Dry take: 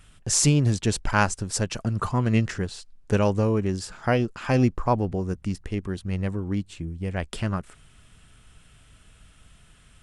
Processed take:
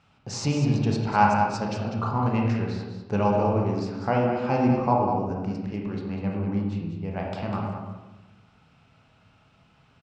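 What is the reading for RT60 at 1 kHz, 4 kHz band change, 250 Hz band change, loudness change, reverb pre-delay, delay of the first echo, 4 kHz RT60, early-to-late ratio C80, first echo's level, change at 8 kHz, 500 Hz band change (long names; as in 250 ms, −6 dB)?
1.0 s, −6.0 dB, +0.5 dB, −0.5 dB, 25 ms, 198 ms, 0.70 s, 2.5 dB, −7.0 dB, below −10 dB, +0.5 dB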